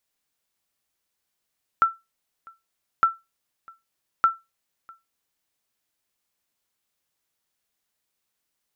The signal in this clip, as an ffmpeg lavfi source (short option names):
-f lavfi -i "aevalsrc='0.335*(sin(2*PI*1340*mod(t,1.21))*exp(-6.91*mod(t,1.21)/0.21)+0.0422*sin(2*PI*1340*max(mod(t,1.21)-0.65,0))*exp(-6.91*max(mod(t,1.21)-0.65,0)/0.21))':d=3.63:s=44100"